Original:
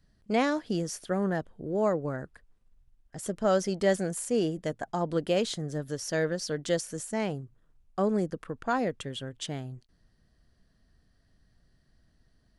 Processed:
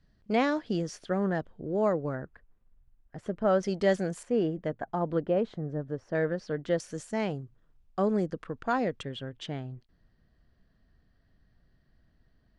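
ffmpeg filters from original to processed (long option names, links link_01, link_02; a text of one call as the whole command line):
ffmpeg -i in.wav -af "asetnsamples=nb_out_samples=441:pad=0,asendcmd='2.15 lowpass f 2200;3.63 lowpass f 5000;4.23 lowpass f 2100;5.21 lowpass f 1200;6.15 lowpass f 2100;6.8 lowpass f 5400;9.03 lowpass f 3300',lowpass=4700" out.wav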